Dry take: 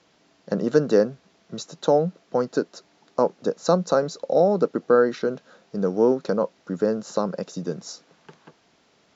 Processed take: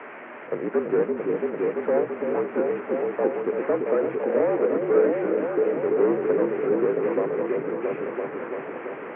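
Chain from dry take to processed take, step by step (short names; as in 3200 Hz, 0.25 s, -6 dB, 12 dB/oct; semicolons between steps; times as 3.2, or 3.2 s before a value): delta modulation 16 kbps, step -31.5 dBFS; repeats that get brighter 0.337 s, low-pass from 400 Hz, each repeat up 1 oct, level 0 dB; mistuned SSB -50 Hz 340–2300 Hz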